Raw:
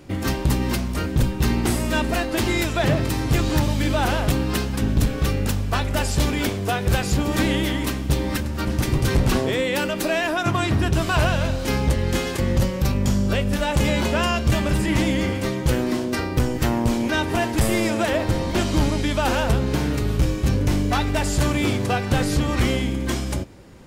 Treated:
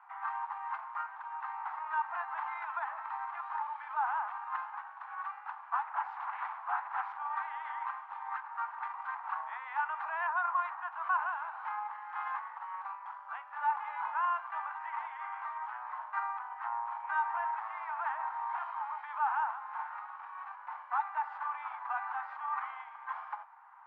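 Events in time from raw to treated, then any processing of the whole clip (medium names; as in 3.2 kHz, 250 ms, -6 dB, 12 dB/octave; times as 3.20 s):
5.81–7.16 s: loudspeaker Doppler distortion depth 0.87 ms
whole clip: low-pass 1.2 kHz 24 dB/octave; peak limiter -21.5 dBFS; steep high-pass 840 Hz 72 dB/octave; trim +6 dB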